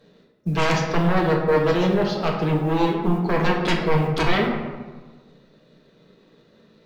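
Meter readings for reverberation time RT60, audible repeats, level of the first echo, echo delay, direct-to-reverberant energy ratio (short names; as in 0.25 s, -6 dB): 1.4 s, none, none, none, -1.0 dB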